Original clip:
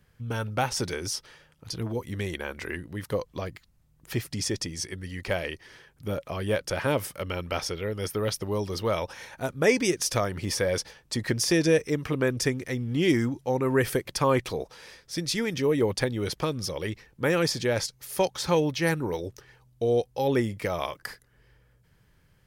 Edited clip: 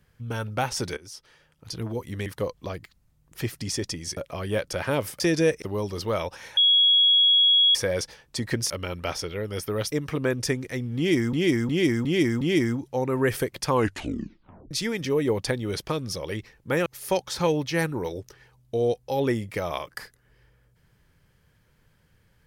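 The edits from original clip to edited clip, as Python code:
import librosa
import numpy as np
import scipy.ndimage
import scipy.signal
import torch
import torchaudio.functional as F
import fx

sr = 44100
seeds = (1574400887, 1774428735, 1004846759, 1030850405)

y = fx.edit(x, sr, fx.fade_in_from(start_s=0.97, length_s=0.79, floor_db=-18.0),
    fx.cut(start_s=2.26, length_s=0.72),
    fx.cut(start_s=4.89, length_s=1.25),
    fx.swap(start_s=7.17, length_s=1.22, other_s=11.47, other_length_s=0.42),
    fx.bleep(start_s=9.34, length_s=1.18, hz=3330.0, db=-15.0),
    fx.repeat(start_s=12.94, length_s=0.36, count=5),
    fx.tape_stop(start_s=14.23, length_s=1.01),
    fx.cut(start_s=17.39, length_s=0.55), tone=tone)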